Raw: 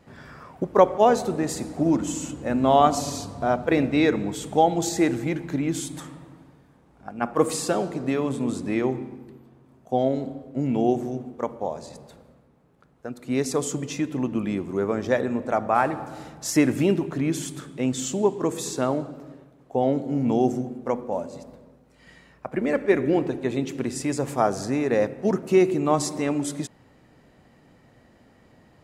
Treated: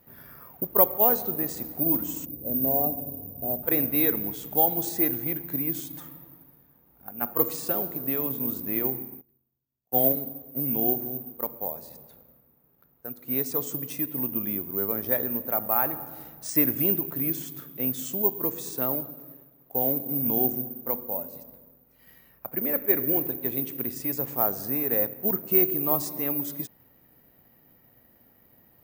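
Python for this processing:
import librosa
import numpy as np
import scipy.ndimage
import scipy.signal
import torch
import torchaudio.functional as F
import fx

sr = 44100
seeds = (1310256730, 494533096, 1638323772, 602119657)

y = fx.cheby2_lowpass(x, sr, hz=2800.0, order=4, stop_db=70, at=(2.24, 3.62), fade=0.02)
y = (np.kron(scipy.signal.resample_poly(y, 1, 3), np.eye(3)[0]) * 3)[:len(y)]
y = fx.band_widen(y, sr, depth_pct=100, at=(9.21, 10.13))
y = y * 10.0 ** (-8.0 / 20.0)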